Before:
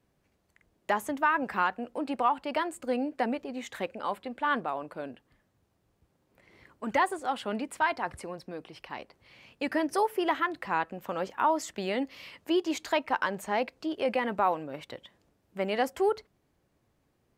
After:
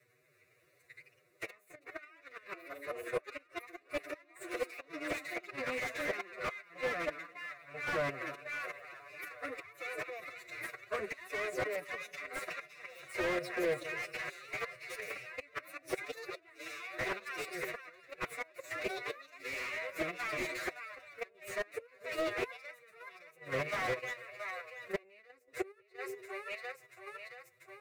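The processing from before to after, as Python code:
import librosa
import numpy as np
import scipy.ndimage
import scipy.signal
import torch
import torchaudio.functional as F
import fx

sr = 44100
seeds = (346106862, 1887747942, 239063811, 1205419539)

y = fx.lower_of_two(x, sr, delay_ms=8.1)
y = scipy.signal.sosfilt(scipy.signal.butter(4, 87.0, 'highpass', fs=sr, output='sos'), y)
y = fx.echo_split(y, sr, split_hz=550.0, low_ms=92, high_ms=429, feedback_pct=52, wet_db=-14)
y = fx.gate_flip(y, sr, shuts_db=-24.0, range_db=-36)
y = fx.low_shelf(y, sr, hz=110.0, db=-6.0)
y = fx.level_steps(y, sr, step_db=10)
y = fx.echo_pitch(y, sr, ms=152, semitones=3, count=2, db_per_echo=-6.0)
y = fx.stretch_vocoder(y, sr, factor=1.6)
y = fx.band_shelf(y, sr, hz=2800.0, db=13.0, octaves=1.2)
y = fx.fixed_phaser(y, sr, hz=870.0, stages=6)
y = fx.slew_limit(y, sr, full_power_hz=10.0)
y = F.gain(torch.from_numpy(y), 10.5).numpy()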